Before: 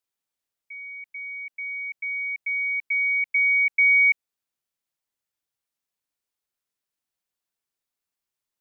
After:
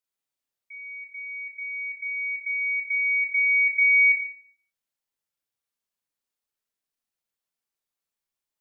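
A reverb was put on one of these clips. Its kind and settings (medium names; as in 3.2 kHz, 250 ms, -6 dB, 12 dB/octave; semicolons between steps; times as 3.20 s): Schroeder reverb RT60 0.53 s, combs from 28 ms, DRR 2 dB; trim -4 dB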